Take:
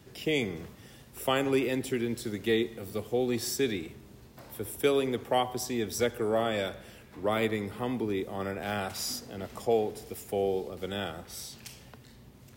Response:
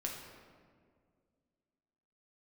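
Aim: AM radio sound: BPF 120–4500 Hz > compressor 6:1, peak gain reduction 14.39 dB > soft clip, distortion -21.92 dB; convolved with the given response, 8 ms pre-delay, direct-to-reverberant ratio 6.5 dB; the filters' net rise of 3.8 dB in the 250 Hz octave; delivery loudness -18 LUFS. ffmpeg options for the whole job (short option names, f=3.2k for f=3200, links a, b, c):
-filter_complex "[0:a]equalizer=f=250:t=o:g=5,asplit=2[a][b];[1:a]atrim=start_sample=2205,adelay=8[c];[b][c]afir=irnorm=-1:irlink=0,volume=-7.5dB[d];[a][d]amix=inputs=2:normalize=0,highpass=120,lowpass=4.5k,acompressor=threshold=-33dB:ratio=6,asoftclip=threshold=-26dB,volume=21dB"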